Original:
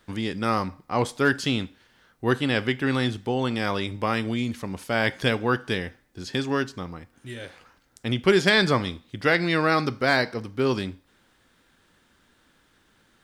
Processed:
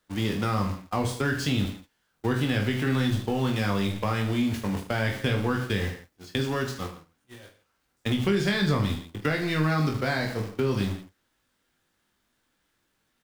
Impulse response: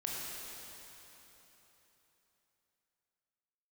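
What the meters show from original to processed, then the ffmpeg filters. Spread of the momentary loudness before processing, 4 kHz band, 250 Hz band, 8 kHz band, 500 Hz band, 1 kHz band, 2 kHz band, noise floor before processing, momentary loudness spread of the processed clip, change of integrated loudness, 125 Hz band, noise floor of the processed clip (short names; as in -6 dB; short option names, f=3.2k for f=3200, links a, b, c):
16 LU, -4.5 dB, -0.5 dB, 0.0 dB, -5.0 dB, -4.5 dB, -5.5 dB, -64 dBFS, 8 LU, -2.5 dB, +3.0 dB, -74 dBFS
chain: -filter_complex "[0:a]aeval=exprs='val(0)+0.5*0.0316*sgn(val(0))':c=same,agate=range=-41dB:threshold=-28dB:ratio=16:detection=peak,aecho=1:1:20|45|76.25|115.3|164.1:0.631|0.398|0.251|0.158|0.1,acrossover=split=190[a][b];[b]acompressor=threshold=-30dB:ratio=3[c];[a][c]amix=inputs=2:normalize=0,volume=1dB"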